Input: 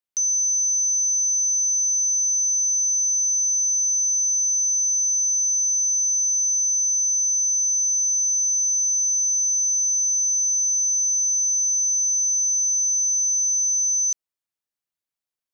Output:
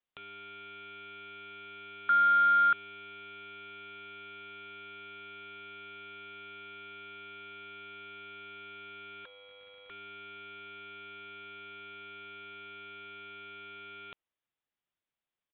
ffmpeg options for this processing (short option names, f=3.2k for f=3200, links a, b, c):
-filter_complex "[0:a]asettb=1/sr,asplit=3[a][b][c];[a]atrim=end=2.094[d];[b]atrim=start=2.09:end=2.73,asetpts=PTS-STARTPTS,afade=t=in:d=0.004:c=qsin,afade=t=out:st=0.636:d=0.004:c=qsin,aeval=exprs='0.126*sin(PI/2*6.31*val(0)/0.126)':c=same[e];[c]atrim=start=2.726[f];[d][e]acrossfade=d=0.004:c1=hsin:c2=qsin[g];[g][f]acrossfade=d=0.004:c1=qsin:c2=hsin,asettb=1/sr,asplit=3[h][i][j];[h]atrim=end=9.254[k];[i]atrim=start=9.25:end=9.9,asetpts=PTS-STARTPTS,afade=t=in:d=0.004:c=qsin,afade=t=out:st=0.646:d=0.004:c=qsin,aecho=1:1:2.9:0.43,atrim=end_sample=28665[l];[j]atrim=start=9.896[m];[k][l]acrossfade=d=0.004:c1=hsin:c2=qsin[n];[n][m]acrossfade=d=0.004:c1=qsin:c2=hsin,acrusher=bits=4:mode=log:mix=0:aa=0.000001,aresample=8000,aresample=44100,volume=2.5dB"